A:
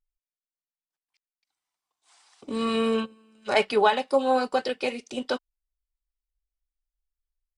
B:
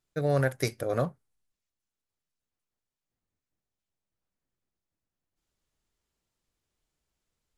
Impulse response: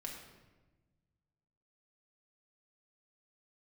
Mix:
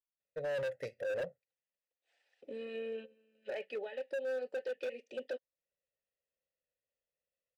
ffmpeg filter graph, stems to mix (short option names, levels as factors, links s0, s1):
-filter_complex "[0:a]acompressor=threshold=0.0398:ratio=4,volume=0.944[s0];[1:a]aecho=1:1:1.5:0.57,adelay=200,volume=0.944[s1];[s0][s1]amix=inputs=2:normalize=0,asplit=3[s2][s3][s4];[s2]bandpass=f=530:t=q:w=8,volume=1[s5];[s3]bandpass=f=1840:t=q:w=8,volume=0.501[s6];[s4]bandpass=f=2480:t=q:w=8,volume=0.355[s7];[s5][s6][s7]amix=inputs=3:normalize=0,lowshelf=f=220:g=9,asoftclip=type=hard:threshold=0.0211"